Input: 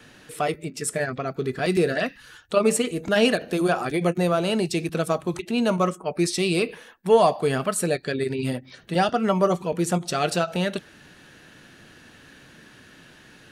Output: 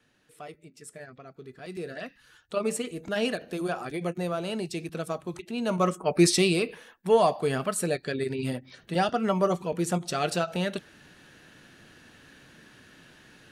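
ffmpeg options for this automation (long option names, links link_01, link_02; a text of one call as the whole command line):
ffmpeg -i in.wav -af "volume=4dB,afade=type=in:start_time=1.64:duration=0.95:silence=0.334965,afade=type=in:start_time=5.61:duration=0.68:silence=0.237137,afade=type=out:start_time=6.29:duration=0.3:silence=0.398107" out.wav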